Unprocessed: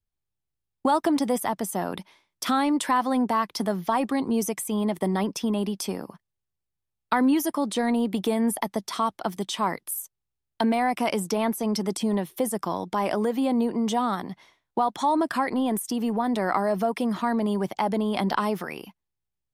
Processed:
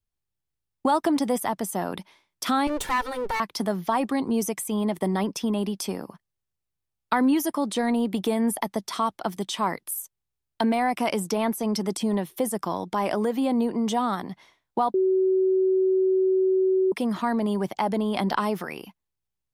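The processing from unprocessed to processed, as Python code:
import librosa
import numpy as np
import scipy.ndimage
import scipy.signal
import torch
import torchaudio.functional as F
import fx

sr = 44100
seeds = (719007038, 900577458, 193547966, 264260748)

y = fx.lower_of_two(x, sr, delay_ms=2.2, at=(2.67, 3.4))
y = fx.edit(y, sr, fx.bleep(start_s=14.94, length_s=1.98, hz=377.0, db=-18.0), tone=tone)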